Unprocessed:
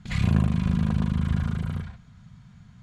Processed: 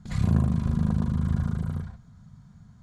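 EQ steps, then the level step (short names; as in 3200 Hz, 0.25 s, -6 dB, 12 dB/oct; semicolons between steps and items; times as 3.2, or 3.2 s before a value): bell 2600 Hz -13.5 dB 1.2 oct; notches 60/120/180 Hz; 0.0 dB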